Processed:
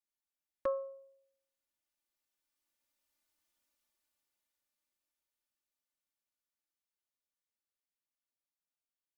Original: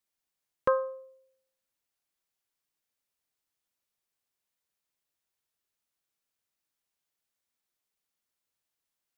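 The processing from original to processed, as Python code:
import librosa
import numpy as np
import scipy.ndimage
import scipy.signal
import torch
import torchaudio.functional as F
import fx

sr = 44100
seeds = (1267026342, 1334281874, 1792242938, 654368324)

y = fx.doppler_pass(x, sr, speed_mps=11, closest_m=7.6, pass_at_s=3.43)
y = y + 0.85 * np.pad(y, (int(3.4 * sr / 1000.0), 0))[:len(y)]
y = F.gain(torch.from_numpy(y), 1.0).numpy()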